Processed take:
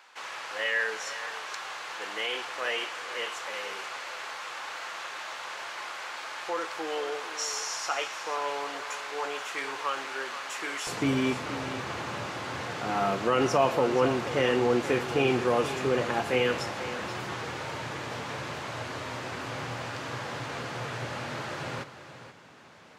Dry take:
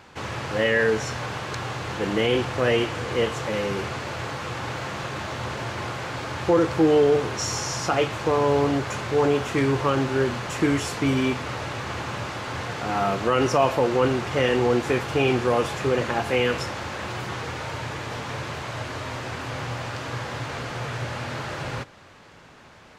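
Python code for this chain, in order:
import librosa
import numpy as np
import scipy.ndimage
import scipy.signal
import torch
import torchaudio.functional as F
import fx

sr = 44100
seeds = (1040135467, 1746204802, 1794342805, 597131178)

y = fx.highpass(x, sr, hz=fx.steps((0.0, 910.0), (10.87, 130.0)), slope=12)
y = y + 10.0 ** (-12.5 / 20.0) * np.pad(y, (int(478 * sr / 1000.0), 0))[:len(y)]
y = y * librosa.db_to_amplitude(-3.5)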